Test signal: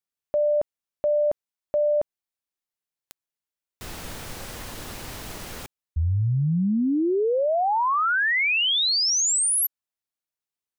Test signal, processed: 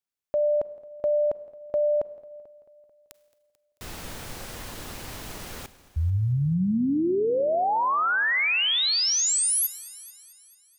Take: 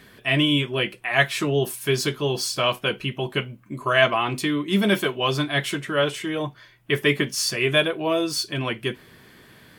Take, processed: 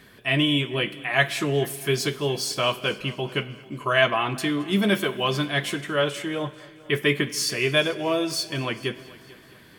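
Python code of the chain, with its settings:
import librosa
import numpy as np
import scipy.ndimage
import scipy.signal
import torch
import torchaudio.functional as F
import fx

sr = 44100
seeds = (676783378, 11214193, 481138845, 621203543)

y = fx.echo_heads(x, sr, ms=220, heads='first and second', feedback_pct=43, wet_db=-23)
y = fx.rev_schroeder(y, sr, rt60_s=1.1, comb_ms=33, drr_db=16.5)
y = y * librosa.db_to_amplitude(-1.5)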